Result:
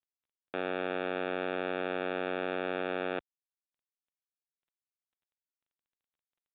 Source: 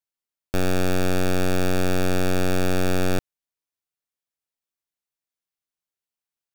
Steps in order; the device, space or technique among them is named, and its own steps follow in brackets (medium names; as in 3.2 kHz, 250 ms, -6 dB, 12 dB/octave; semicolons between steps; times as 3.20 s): high-pass 61 Hz 12 dB/octave; telephone (band-pass 390–3400 Hz; trim -6 dB; µ-law 64 kbps 8 kHz)